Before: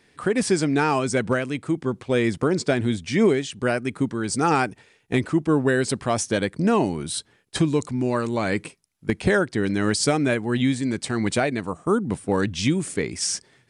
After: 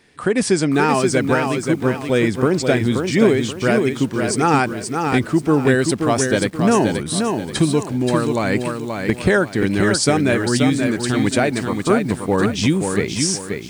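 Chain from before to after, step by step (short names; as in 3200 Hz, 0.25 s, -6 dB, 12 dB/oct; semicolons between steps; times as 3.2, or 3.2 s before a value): lo-fi delay 0.529 s, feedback 35%, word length 8-bit, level -5 dB; gain +4 dB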